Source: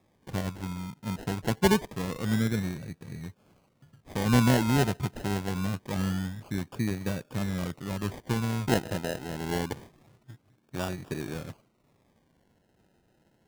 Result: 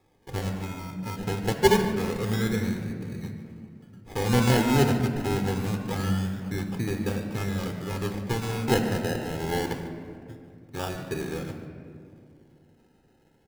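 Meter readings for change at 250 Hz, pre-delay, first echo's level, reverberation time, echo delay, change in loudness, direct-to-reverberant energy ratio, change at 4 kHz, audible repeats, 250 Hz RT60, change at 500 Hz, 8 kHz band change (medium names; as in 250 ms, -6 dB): +1.5 dB, 4 ms, -15.5 dB, 2.4 s, 145 ms, +2.5 dB, 4.5 dB, +3.0 dB, 1, 3.3 s, +5.0 dB, +2.0 dB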